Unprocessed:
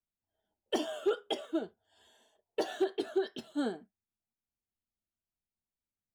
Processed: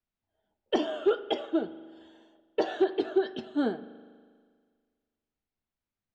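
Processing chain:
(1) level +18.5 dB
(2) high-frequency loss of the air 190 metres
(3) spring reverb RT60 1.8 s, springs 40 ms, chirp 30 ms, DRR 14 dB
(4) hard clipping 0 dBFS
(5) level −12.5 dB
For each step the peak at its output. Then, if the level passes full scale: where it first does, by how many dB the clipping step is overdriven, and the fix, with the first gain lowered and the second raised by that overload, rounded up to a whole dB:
−1.5, −2.5, −2.0, −2.0, −14.5 dBFS
no step passes full scale

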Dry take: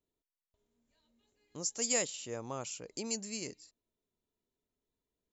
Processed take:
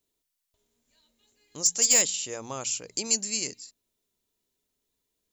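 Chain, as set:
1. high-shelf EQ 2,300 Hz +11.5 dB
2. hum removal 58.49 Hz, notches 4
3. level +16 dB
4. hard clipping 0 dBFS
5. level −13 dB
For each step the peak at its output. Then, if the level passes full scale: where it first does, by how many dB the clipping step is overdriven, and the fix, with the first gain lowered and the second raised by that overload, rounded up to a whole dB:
−8.5, −8.5, +7.5, 0.0, −13.0 dBFS
step 3, 7.5 dB
step 3 +8 dB, step 5 −5 dB

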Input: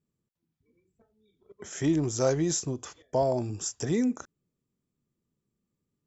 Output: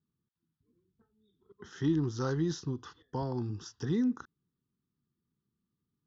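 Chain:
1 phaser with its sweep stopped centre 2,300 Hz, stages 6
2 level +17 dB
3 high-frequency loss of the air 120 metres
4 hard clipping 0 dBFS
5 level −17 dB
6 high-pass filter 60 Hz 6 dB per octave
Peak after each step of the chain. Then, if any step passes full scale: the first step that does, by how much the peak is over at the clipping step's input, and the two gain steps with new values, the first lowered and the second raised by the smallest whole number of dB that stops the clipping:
−19.0, −2.0, −2.5, −2.5, −19.5, −19.0 dBFS
no step passes full scale

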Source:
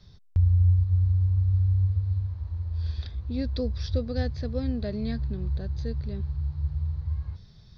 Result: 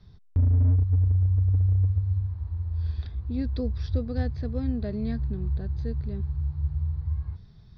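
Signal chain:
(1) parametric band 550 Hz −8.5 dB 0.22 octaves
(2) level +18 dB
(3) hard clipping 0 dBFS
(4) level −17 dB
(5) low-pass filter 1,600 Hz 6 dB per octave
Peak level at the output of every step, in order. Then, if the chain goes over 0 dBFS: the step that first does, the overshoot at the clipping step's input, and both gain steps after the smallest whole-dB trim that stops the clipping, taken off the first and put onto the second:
−13.5, +4.5, 0.0, −17.0, −17.0 dBFS
step 2, 4.5 dB
step 2 +13 dB, step 4 −12 dB

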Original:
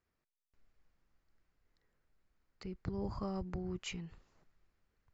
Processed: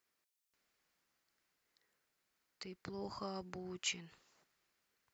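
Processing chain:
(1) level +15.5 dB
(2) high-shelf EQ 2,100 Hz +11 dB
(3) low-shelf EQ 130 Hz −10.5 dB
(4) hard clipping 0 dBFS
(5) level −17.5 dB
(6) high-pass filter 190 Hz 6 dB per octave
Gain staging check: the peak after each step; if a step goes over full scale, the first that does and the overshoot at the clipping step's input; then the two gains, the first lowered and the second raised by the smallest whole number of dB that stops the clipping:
−9.0, −5.5, −5.5, −5.5, −23.0, −23.0 dBFS
no step passes full scale

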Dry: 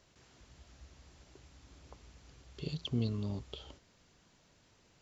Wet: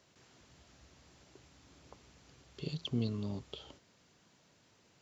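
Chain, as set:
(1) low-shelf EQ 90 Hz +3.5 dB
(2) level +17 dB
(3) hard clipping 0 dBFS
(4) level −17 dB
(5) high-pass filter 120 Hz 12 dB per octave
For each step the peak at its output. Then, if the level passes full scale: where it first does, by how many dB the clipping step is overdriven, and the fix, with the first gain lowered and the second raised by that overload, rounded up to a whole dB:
−22.0, −5.0, −5.0, −22.0, −22.5 dBFS
no step passes full scale

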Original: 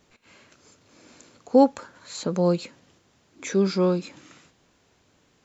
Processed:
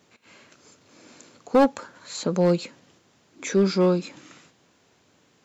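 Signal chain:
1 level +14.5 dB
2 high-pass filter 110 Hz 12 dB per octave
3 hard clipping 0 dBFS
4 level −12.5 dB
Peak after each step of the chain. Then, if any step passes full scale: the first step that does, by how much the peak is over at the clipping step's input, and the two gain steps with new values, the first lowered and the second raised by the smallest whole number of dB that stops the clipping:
+8.5, +8.5, 0.0, −12.5 dBFS
step 1, 8.5 dB
step 1 +5.5 dB, step 4 −3.5 dB

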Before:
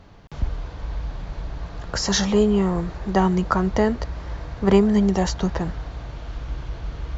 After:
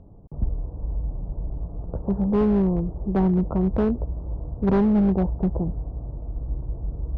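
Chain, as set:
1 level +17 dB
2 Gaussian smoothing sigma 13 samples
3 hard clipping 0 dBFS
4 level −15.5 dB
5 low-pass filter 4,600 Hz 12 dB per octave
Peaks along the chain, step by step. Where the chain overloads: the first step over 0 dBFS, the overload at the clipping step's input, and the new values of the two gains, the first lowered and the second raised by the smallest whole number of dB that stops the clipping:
+12.5, +9.5, 0.0, −15.5, −15.5 dBFS
step 1, 9.5 dB
step 1 +7 dB, step 4 −5.5 dB

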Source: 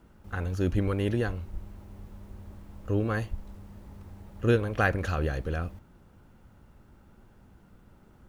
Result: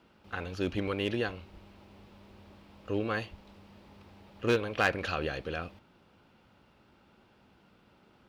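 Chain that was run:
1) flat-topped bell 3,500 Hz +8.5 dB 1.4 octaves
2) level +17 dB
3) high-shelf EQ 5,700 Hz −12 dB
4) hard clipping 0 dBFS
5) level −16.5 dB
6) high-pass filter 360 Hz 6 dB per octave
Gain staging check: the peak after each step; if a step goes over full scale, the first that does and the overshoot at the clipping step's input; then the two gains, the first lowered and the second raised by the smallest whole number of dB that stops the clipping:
−10.0, +7.0, +6.0, 0.0, −16.5, −12.5 dBFS
step 2, 6.0 dB
step 2 +11 dB, step 5 −10.5 dB

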